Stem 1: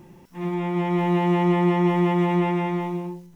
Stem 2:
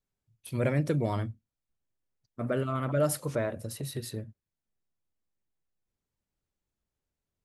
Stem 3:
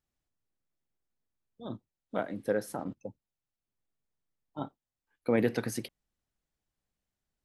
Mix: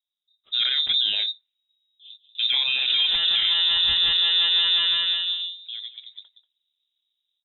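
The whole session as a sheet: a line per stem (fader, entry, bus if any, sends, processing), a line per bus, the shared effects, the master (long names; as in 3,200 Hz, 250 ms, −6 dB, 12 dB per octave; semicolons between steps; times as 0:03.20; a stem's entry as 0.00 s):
+1.5 dB, 2.35 s, no send, no echo send, no processing
+1.0 dB, 0.00 s, no send, no echo send, automatic gain control gain up to 13 dB; low-shelf EQ 95 Hz −7.5 dB; amplitude modulation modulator 35 Hz, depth 15%
−5.0 dB, 0.40 s, no send, echo send −14 dB, sample-and-hold tremolo 3.5 Hz, depth 55%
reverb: not used
echo: single-tap delay 187 ms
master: low-pass that shuts in the quiet parts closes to 680 Hz, open at −15 dBFS; voice inversion scrambler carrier 3,800 Hz; brickwall limiter −13 dBFS, peak gain reduction 11 dB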